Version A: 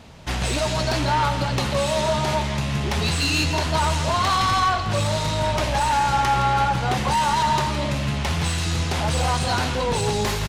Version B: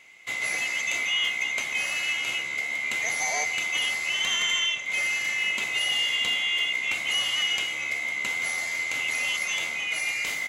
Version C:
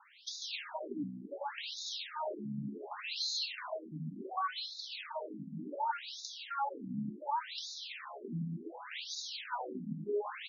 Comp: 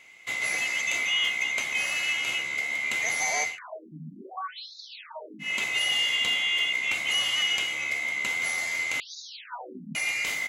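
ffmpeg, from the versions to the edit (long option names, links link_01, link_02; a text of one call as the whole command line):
ffmpeg -i take0.wav -i take1.wav -i take2.wav -filter_complex "[2:a]asplit=2[link_01][link_02];[1:a]asplit=3[link_03][link_04][link_05];[link_03]atrim=end=3.59[link_06];[link_01]atrim=start=3.43:end=5.55[link_07];[link_04]atrim=start=5.39:end=9.002[link_08];[link_02]atrim=start=8.998:end=9.952[link_09];[link_05]atrim=start=9.948[link_10];[link_06][link_07]acrossfade=duration=0.16:curve1=tri:curve2=tri[link_11];[link_11][link_08]acrossfade=duration=0.16:curve1=tri:curve2=tri[link_12];[link_12][link_09]acrossfade=duration=0.004:curve1=hsin:curve2=hsin[link_13];[link_13][link_10]acrossfade=duration=0.004:curve1=hsin:curve2=hsin" out.wav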